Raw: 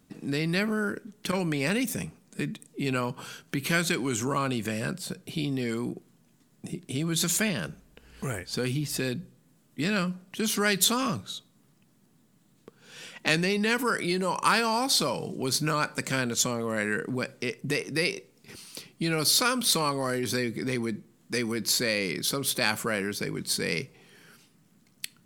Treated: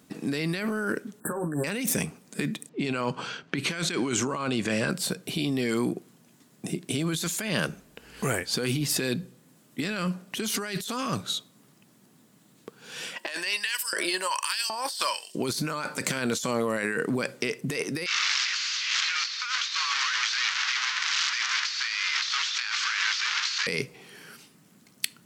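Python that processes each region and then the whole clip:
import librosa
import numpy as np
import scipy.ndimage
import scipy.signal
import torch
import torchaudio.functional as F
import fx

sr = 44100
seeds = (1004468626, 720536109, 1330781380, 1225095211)

y = fx.chain(x, sr, fx.brickwall_bandstop(low_hz=1800.0, high_hz=7400.0),
    fx.doubler(ms=13.0, db=-3), at=(1.2, 1.64))
y = fx.chain(y, sr, fx.env_lowpass(base_hz=2600.0, full_db=-25.0),
    fx.lowpass(hz=7000.0, slope=12), at=(2.69, 4.9))
y = fx.chain(y, sr, fx.ripple_eq(per_octave=1.3, db=7),
    fx.filter_lfo_highpass(shape='saw_up', hz=1.3, low_hz=370.0, high_hz=5000.0, q=0.84), at=(13.16, 15.35))
y = fx.chain(y, sr, fx.delta_mod(bps=32000, step_db=-20.0),
    fx.cheby2_highpass(hz=650.0, order=4, stop_db=40),
    fx.echo_feedback(ms=163, feedback_pct=43, wet_db=-17.0), at=(18.06, 23.67))
y = fx.highpass(y, sr, hz=220.0, slope=6)
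y = fx.over_compress(y, sr, threshold_db=-33.0, ratio=-1.0)
y = F.gain(torch.from_numpy(y), 4.5).numpy()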